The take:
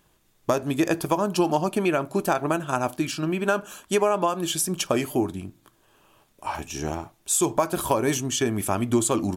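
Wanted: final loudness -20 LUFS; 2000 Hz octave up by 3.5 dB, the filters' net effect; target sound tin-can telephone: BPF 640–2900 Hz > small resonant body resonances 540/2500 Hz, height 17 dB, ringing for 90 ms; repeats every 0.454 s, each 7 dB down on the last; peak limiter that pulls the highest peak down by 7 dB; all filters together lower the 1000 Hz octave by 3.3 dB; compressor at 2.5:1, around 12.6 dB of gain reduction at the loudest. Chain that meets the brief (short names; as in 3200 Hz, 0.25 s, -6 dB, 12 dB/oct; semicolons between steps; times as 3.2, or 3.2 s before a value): bell 1000 Hz -5 dB; bell 2000 Hz +8 dB; compressor 2.5:1, threshold -37 dBFS; limiter -26 dBFS; BPF 640–2900 Hz; feedback echo 0.454 s, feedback 45%, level -7 dB; small resonant body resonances 540/2500 Hz, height 17 dB, ringing for 90 ms; gain +18.5 dB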